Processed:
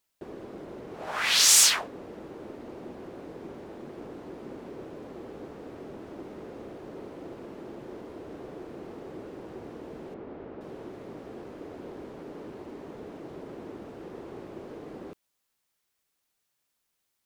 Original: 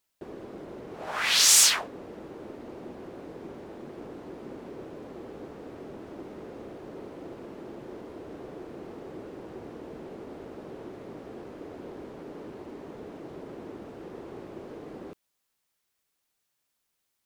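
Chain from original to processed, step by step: 10.14–10.61 s: low-pass 2.5 kHz 12 dB/octave

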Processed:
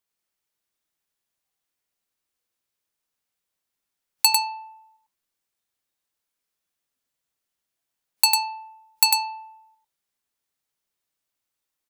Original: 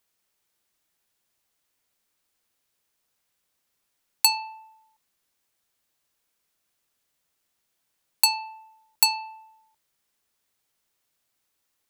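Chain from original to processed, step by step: spectral noise reduction 10 dB; on a send: delay 99 ms -3.5 dB; on the sum: trim +1.5 dB

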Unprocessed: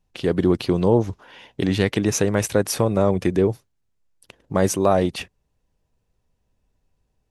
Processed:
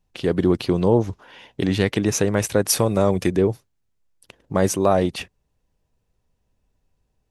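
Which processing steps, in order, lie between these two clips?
2.69–3.30 s: treble shelf 3.4 kHz +8 dB

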